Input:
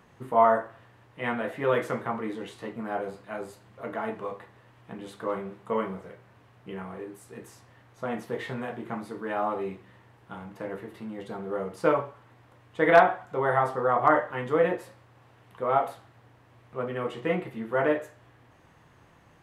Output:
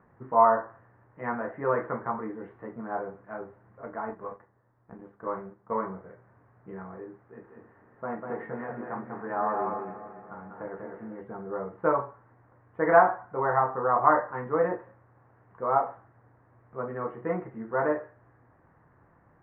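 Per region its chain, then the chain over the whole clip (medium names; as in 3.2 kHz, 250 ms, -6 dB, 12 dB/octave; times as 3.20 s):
3.85–5.83 s: companding laws mixed up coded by A + tape noise reduction on one side only decoder only
7.24–11.21 s: backward echo that repeats 142 ms, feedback 74%, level -11.5 dB + bass shelf 130 Hz -6.5 dB + delay 196 ms -4 dB
whole clip: steep low-pass 1.8 kHz 36 dB/octave; dynamic bell 1 kHz, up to +6 dB, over -41 dBFS, Q 2; trim -3 dB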